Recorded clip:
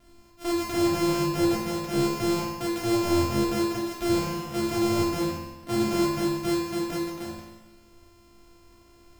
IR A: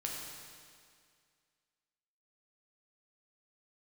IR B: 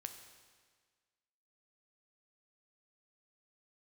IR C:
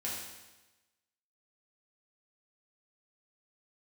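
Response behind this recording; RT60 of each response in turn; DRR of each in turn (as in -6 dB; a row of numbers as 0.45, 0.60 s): C; 2.1, 1.6, 1.1 s; -2.0, 6.0, -6.5 dB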